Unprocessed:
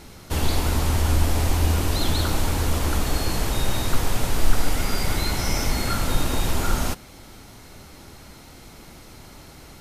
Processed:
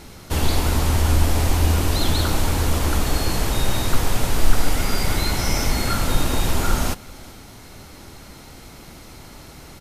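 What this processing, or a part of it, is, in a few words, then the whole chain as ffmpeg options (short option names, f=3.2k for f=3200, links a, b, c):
ducked delay: -filter_complex "[0:a]asplit=3[a][b][c];[b]adelay=382,volume=-6.5dB[d];[c]apad=whole_len=449277[e];[d][e]sidechaincompress=threshold=-44dB:ratio=3:attack=16:release=791[f];[a][f]amix=inputs=2:normalize=0,volume=2.5dB"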